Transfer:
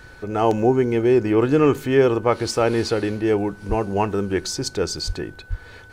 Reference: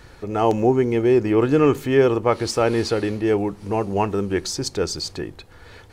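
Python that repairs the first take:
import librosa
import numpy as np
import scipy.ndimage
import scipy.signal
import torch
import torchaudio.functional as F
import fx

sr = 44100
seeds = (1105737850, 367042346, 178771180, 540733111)

y = fx.notch(x, sr, hz=1500.0, q=30.0)
y = fx.fix_deplosive(y, sr, at_s=(3.68, 5.06, 5.49))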